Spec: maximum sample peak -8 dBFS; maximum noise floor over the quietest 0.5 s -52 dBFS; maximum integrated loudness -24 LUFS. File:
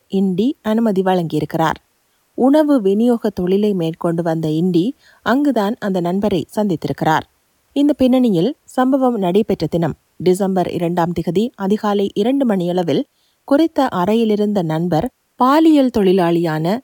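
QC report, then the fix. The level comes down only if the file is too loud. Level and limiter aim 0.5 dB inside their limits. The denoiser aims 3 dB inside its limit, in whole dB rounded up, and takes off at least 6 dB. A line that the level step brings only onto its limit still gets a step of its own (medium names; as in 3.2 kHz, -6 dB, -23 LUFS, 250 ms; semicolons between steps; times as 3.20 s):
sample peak -2.5 dBFS: fail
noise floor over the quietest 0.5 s -62 dBFS: pass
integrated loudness -16.5 LUFS: fail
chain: trim -8 dB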